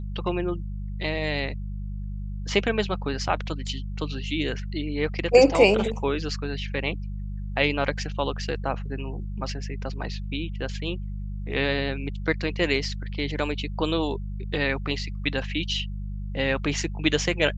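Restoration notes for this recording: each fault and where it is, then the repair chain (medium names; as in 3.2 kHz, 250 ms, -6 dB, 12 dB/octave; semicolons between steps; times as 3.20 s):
hum 50 Hz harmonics 4 -32 dBFS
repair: de-hum 50 Hz, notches 4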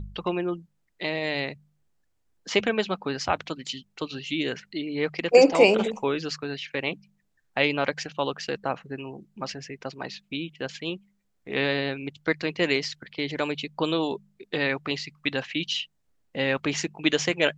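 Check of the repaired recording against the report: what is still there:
nothing left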